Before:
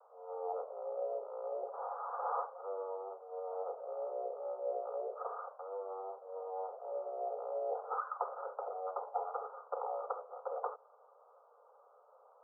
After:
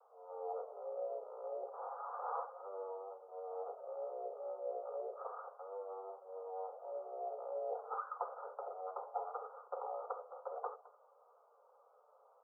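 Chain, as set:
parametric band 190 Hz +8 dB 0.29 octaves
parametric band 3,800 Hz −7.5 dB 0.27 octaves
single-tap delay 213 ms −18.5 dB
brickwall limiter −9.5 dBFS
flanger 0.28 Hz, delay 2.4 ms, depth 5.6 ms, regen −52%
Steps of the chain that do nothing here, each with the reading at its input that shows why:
parametric band 190 Hz: nothing at its input below 360 Hz
parametric band 3,800 Hz: nothing at its input above 1,500 Hz
brickwall limiter −9.5 dBFS: peak of its input −21.5 dBFS

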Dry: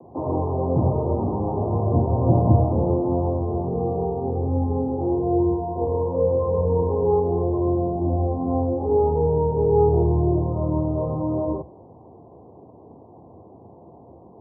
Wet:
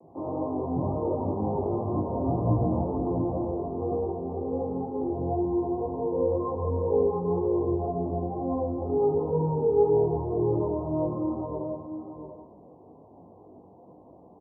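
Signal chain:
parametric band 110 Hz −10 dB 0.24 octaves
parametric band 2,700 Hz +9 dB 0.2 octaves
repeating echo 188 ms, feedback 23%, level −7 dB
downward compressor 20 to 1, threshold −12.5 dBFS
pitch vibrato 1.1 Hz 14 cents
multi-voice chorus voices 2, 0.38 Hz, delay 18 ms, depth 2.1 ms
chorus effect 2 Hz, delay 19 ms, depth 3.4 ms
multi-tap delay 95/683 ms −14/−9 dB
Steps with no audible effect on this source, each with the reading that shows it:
parametric band 2,700 Hz: nothing at its input above 1,100 Hz

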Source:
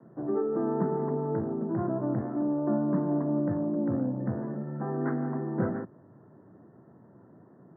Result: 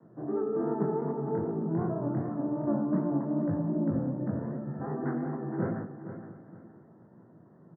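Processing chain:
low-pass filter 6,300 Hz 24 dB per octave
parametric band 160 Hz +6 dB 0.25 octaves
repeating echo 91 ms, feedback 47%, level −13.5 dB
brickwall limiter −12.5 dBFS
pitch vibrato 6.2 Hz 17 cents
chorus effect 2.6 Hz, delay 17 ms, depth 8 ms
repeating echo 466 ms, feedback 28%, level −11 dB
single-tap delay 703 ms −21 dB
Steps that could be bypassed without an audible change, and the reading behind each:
low-pass filter 6,300 Hz: nothing at its input above 1,000 Hz
brickwall limiter −12.5 dBFS: peak of its input −14.5 dBFS

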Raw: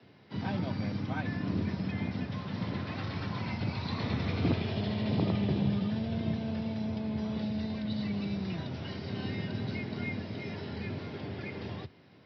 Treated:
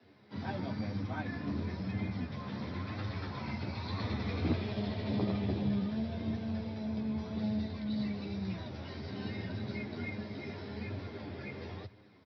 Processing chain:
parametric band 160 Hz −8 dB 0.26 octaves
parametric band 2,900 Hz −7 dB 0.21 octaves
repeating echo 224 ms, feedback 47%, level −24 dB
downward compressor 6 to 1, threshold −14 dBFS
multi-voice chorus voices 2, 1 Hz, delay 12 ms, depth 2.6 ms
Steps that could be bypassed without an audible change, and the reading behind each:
downward compressor, threshold −14 dBFS: peak of its input −16.5 dBFS

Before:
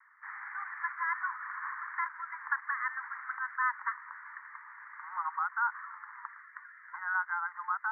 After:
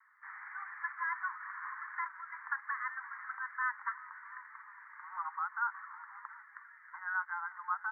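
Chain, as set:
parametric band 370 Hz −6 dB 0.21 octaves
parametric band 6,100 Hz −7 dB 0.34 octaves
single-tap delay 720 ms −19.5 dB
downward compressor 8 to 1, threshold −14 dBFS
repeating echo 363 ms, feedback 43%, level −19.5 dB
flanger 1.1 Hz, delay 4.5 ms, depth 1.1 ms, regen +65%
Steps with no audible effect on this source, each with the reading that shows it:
parametric band 370 Hz: nothing at its input below 760 Hz
parametric band 6,100 Hz: nothing at its input above 2,300 Hz
downward compressor, threshold −14 dBFS: peak of its input −18.0 dBFS

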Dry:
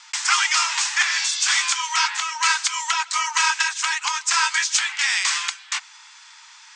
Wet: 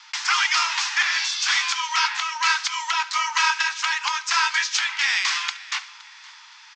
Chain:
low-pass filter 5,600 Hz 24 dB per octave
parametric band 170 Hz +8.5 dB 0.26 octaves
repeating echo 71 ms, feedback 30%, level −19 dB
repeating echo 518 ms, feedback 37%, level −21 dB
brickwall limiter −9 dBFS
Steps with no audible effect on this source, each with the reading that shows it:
parametric band 170 Hz: nothing at its input below 640 Hz

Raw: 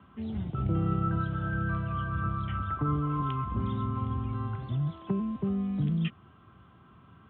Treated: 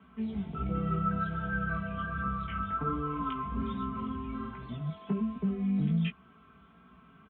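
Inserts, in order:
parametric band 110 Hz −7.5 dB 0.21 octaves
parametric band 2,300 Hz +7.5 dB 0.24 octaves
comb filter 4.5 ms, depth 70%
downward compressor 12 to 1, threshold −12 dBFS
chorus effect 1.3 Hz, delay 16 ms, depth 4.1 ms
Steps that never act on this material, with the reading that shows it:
downward compressor, threshold −12 dBFS: peak of its input −15.5 dBFS

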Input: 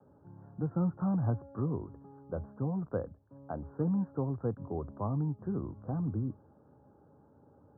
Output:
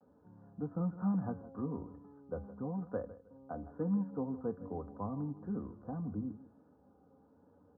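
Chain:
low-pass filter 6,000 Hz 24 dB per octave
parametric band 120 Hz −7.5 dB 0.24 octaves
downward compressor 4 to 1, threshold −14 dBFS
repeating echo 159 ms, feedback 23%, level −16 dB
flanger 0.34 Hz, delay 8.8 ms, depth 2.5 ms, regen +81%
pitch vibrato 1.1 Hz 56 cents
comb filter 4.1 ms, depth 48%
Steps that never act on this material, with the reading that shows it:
low-pass filter 6,000 Hz: nothing at its input above 1,100 Hz
downward compressor, threshold −14 dBFS: peak of its input −20.5 dBFS

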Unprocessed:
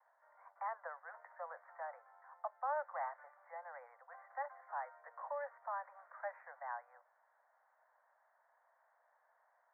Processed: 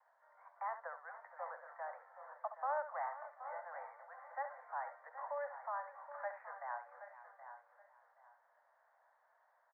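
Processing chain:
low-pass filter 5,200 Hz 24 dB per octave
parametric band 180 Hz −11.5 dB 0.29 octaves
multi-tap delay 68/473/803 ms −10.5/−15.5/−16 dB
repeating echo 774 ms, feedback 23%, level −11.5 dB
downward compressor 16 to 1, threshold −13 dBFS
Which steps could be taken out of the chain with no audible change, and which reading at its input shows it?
low-pass filter 5,200 Hz: nothing at its input above 2,200 Hz
parametric band 180 Hz: nothing at its input below 450 Hz
downward compressor, threshold −13 dBFS: peak of its input −27.5 dBFS

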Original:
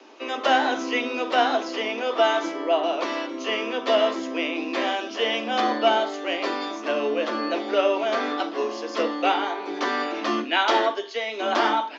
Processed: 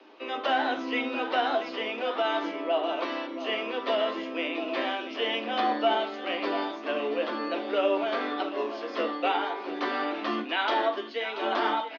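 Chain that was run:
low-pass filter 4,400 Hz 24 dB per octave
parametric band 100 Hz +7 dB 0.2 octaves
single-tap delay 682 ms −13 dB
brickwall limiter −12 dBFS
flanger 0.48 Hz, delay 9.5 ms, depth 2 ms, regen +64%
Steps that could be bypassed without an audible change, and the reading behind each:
parametric band 100 Hz: nothing at its input below 190 Hz

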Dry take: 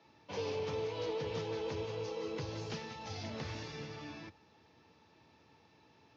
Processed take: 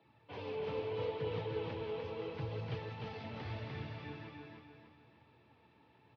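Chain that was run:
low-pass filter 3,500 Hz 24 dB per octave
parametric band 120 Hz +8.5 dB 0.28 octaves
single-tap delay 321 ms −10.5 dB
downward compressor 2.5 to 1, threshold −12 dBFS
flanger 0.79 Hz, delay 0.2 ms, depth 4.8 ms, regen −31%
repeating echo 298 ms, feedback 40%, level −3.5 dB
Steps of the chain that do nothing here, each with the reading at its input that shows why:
downward compressor, threshold −12 dBFS: peak of its input −26.5 dBFS

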